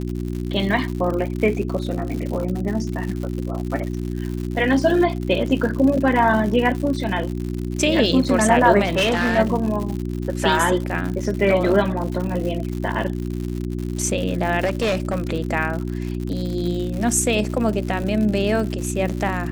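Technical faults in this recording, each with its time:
crackle 130 per s -27 dBFS
hum 60 Hz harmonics 6 -26 dBFS
8.85–9.39 s: clipped -15 dBFS
14.64–15.16 s: clipped -16.5 dBFS
18.03 s: dropout 3.9 ms

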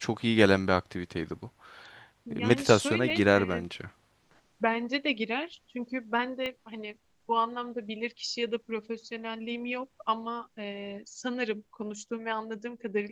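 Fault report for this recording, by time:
3.10 s: dropout 3 ms
6.46 s: pop -21 dBFS

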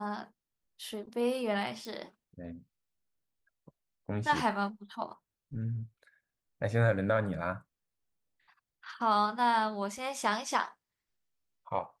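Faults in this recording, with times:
1.85 s: pop -29 dBFS

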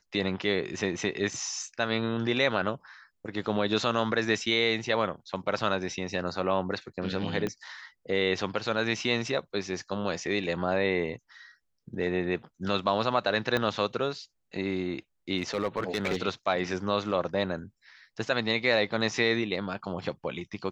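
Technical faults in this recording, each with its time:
7.47 s: pop -18 dBFS
13.57 s: pop -14 dBFS
15.37–16.23 s: clipped -22.5 dBFS

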